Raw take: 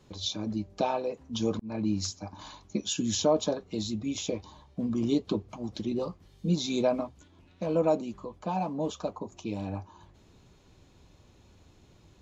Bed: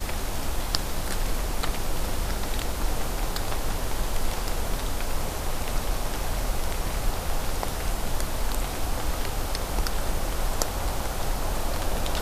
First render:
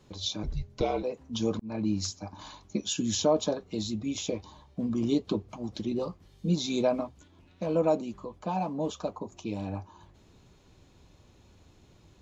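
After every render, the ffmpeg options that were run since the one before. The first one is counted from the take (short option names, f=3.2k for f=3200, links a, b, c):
-filter_complex "[0:a]asettb=1/sr,asplit=3[a][b][c];[a]atrim=end=0.434[d];[b]atrim=start=0.43:end=1.03,asetpts=PTS-STARTPTS,afade=t=in:d=0.004:c=qsin,afade=t=out:st=0.596:d=0.004:c=qsin,afreqshift=-180[e];[c]atrim=start=1.026[f];[d][e]acrossfade=d=0.004:c1=hsin:c2=qsin[g];[g][f]acrossfade=d=0.004:c1=qsin:c2=hsin"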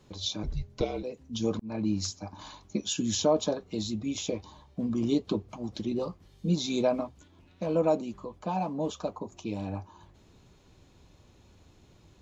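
-filter_complex "[0:a]asettb=1/sr,asplit=3[a][b][c];[a]atrim=end=0.844[d];[b]atrim=start=0.84:end=1.44,asetpts=PTS-STARTPTS,afade=t=in:d=0.004:c=qsin,afade=t=out:st=0.596:d=0.004:c=qsin,equalizer=f=970:w=0.73:g=-10[e];[c]atrim=start=1.436[f];[d][e]acrossfade=d=0.004:c1=hsin:c2=qsin[g];[g][f]acrossfade=d=0.004:c1=qsin:c2=hsin"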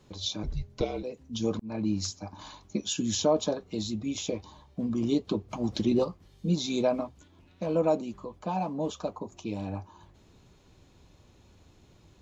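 -filter_complex "[0:a]asplit=3[a][b][c];[a]afade=t=out:st=5.5:d=0.02[d];[b]acontrast=60,afade=t=in:st=5.5:d=0.02,afade=t=out:st=6.03:d=0.02[e];[c]afade=t=in:st=6.03:d=0.02[f];[d][e][f]amix=inputs=3:normalize=0"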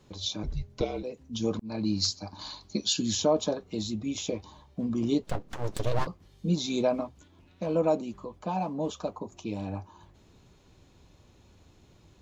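-filter_complex "[0:a]asettb=1/sr,asplit=3[a][b][c];[a]atrim=end=1.654[d];[b]atrim=start=1.65:end=3.13,asetpts=PTS-STARTPTS,afade=t=in:d=0.004:c=qsin,afade=t=out:st=1.476:d=0.004:c=qsin,equalizer=f=4.4k:w=3.3:g=14.5[e];[c]atrim=start=3.126[f];[d][e]acrossfade=d=0.004:c1=hsin:c2=qsin[g];[g][f]acrossfade=d=0.004:c1=qsin:c2=hsin,asettb=1/sr,asplit=3[h][i][j];[h]atrim=end=5.234[k];[i]atrim=start=5.23:end=6.07,asetpts=PTS-STARTPTS,afade=t=in:d=0.004:c=qsin,afade=t=out:st=0.836:d=0.004:c=qsin,aeval=exprs='abs(val(0))':c=same[l];[j]atrim=start=6.066[m];[k][l]acrossfade=d=0.004:c1=hsin:c2=qsin[n];[n][m]acrossfade=d=0.004:c1=qsin:c2=hsin"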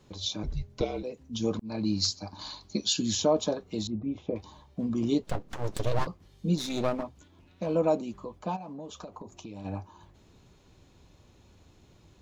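-filter_complex "[0:a]asettb=1/sr,asplit=3[a][b][c];[a]atrim=end=3.874[d];[b]atrim=start=3.87:end=4.36,asetpts=PTS-STARTPTS,afade=t=in:d=0.004:c=qsin,afade=t=out:st=0.486:d=0.004:c=qsin,lowpass=1.1k[e];[c]atrim=start=4.356[f];[d][e]acrossfade=d=0.004:c1=hsin:c2=qsin[g];[g][f]acrossfade=d=0.004:c1=qsin:c2=hsin,asplit=3[h][i][j];[h]afade=t=out:st=6.56:d=0.02[k];[i]aeval=exprs='clip(val(0),-1,0.0158)':c=same,afade=t=in:st=6.56:d=0.02,afade=t=out:st=7.02:d=0.02[l];[j]afade=t=in:st=7.02:d=0.02[m];[k][l][m]amix=inputs=3:normalize=0,asplit=3[n][o][p];[n]afade=t=out:st=8.55:d=0.02[q];[o]acompressor=threshold=-37dB:ratio=16:attack=3.2:release=140:knee=1:detection=peak,afade=t=in:st=8.55:d=0.02,afade=t=out:st=9.64:d=0.02[r];[p]afade=t=in:st=9.64:d=0.02[s];[q][r][s]amix=inputs=3:normalize=0"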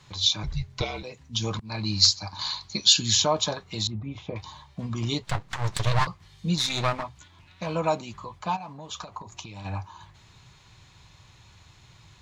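-af "equalizer=f=125:t=o:w=1:g=10,equalizer=f=250:t=o:w=1:g=-8,equalizer=f=500:t=o:w=1:g=-5,equalizer=f=1k:t=o:w=1:g=8,equalizer=f=2k:t=o:w=1:g=9,equalizer=f=4k:t=o:w=1:g=8,equalizer=f=8k:t=o:w=1:g=7"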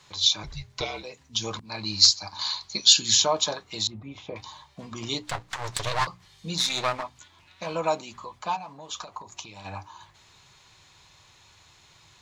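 -af "bass=f=250:g=-9,treble=f=4k:g=3,bandreject=f=60:t=h:w=6,bandreject=f=120:t=h:w=6,bandreject=f=180:t=h:w=6,bandreject=f=240:t=h:w=6,bandreject=f=300:t=h:w=6"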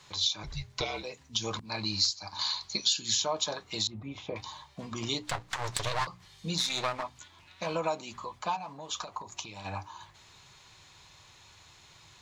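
-af "acompressor=threshold=-28dB:ratio=3"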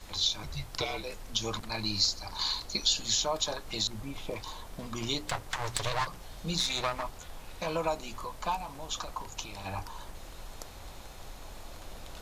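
-filter_complex "[1:a]volume=-18.5dB[a];[0:a][a]amix=inputs=2:normalize=0"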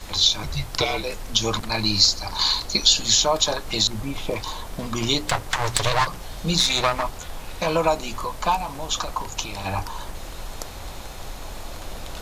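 -af "volume=10.5dB"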